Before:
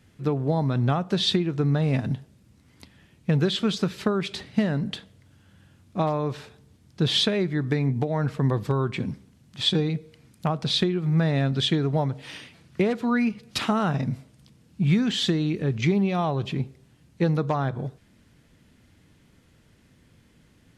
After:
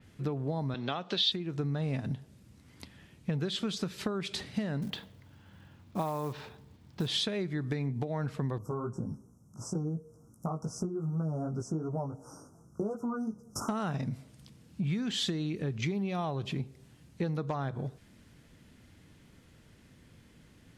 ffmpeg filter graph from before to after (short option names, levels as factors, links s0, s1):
-filter_complex "[0:a]asettb=1/sr,asplit=3[s0][s1][s2];[s0]atrim=end=0.744[s3];[s1]atrim=start=0.74:end=1.32,asetpts=PTS-STARTPTS,afade=t=in:d=0.004:c=qsin,afade=t=out:st=0.576:d=0.004:c=qsin,highpass=260,lowpass=5100,equalizer=f=3500:t=o:w=1.2:g=12[s4];[s2]atrim=start=1.316[s5];[s3][s4]acrossfade=d=0.004:c1=hsin:c2=qsin[s6];[s6][s5]acrossfade=d=0.004:c1=qsin:c2=hsin,asettb=1/sr,asplit=3[s7][s8][s9];[s7]atrim=end=4.824[s10];[s8]atrim=start=4.82:end=7.08,asetpts=PTS-STARTPTS,afade=t=in:d=0.004:c=qsin,afade=t=out:st=2.256:d=0.004:c=qsin,lowpass=4400,equalizer=f=920:w=3.2:g=6,acrusher=bits=6:mode=log:mix=0:aa=0.000001[s11];[s9]atrim=start=7.076[s12];[s10][s11]acrossfade=d=0.004:c1=hsin:c2=qsin[s13];[s13][s12]acrossfade=d=0.004:c1=qsin:c2=hsin,asettb=1/sr,asplit=3[s14][s15][s16];[s14]atrim=end=8.584[s17];[s15]atrim=start=8.58:end=13.69,asetpts=PTS-STARTPTS,afade=t=in:d=0.004:c=qsin,afade=t=out:st=5.106:d=0.004:c=qsin,asuperstop=centerf=2800:order=20:qfactor=0.7,flanger=delay=17:depth=2.4:speed=2.7[s18];[s16]atrim=start=13.686[s19];[s17][s18]acrossfade=d=0.004:c1=hsin:c2=qsin[s20];[s20][s19]acrossfade=d=0.004:c1=qsin:c2=hsin,acompressor=threshold=0.0224:ratio=3,adynamicequalizer=threshold=0.00398:dfrequency=4700:dqfactor=0.7:tfrequency=4700:tqfactor=0.7:attack=5:release=100:ratio=0.375:range=2.5:mode=boostabove:tftype=highshelf"